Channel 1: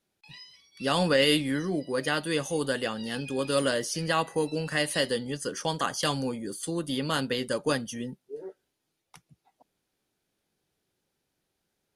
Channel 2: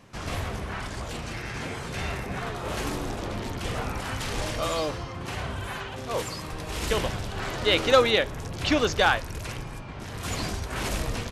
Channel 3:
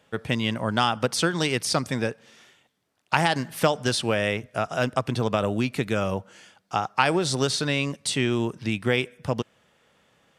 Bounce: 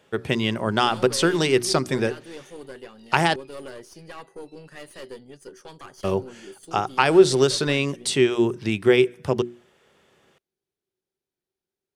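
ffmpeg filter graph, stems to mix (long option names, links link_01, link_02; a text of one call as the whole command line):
ffmpeg -i stem1.wav -i stem2.wav -i stem3.wav -filter_complex "[0:a]aeval=exprs='(tanh(14.1*val(0)+0.7)-tanh(0.7))/14.1':channel_layout=same,adynamicequalizer=threshold=0.00447:dfrequency=2500:dqfactor=0.7:tfrequency=2500:tqfactor=0.7:attack=5:release=100:ratio=0.375:range=2:mode=cutabove:tftype=highshelf,volume=-9dB[link_01];[2:a]bandreject=frequency=60:width_type=h:width=6,bandreject=frequency=120:width_type=h:width=6,bandreject=frequency=180:width_type=h:width=6,bandreject=frequency=240:width_type=h:width=6,bandreject=frequency=300:width_type=h:width=6,bandreject=frequency=360:width_type=h:width=6,volume=1.5dB,asplit=3[link_02][link_03][link_04];[link_02]atrim=end=3.36,asetpts=PTS-STARTPTS,afade=type=out:start_time=3.356:duration=0.004:curve=hsin[link_05];[link_03]atrim=start=3.36:end=6.04,asetpts=PTS-STARTPTS,volume=0[link_06];[link_04]atrim=start=6.04,asetpts=PTS-STARTPTS,afade=type=in:duration=0.004:curve=hsin[link_07];[link_05][link_06][link_07]concat=n=3:v=0:a=1[link_08];[link_01][link_08]amix=inputs=2:normalize=0,equalizer=frequency=380:width=6.5:gain=13.5" out.wav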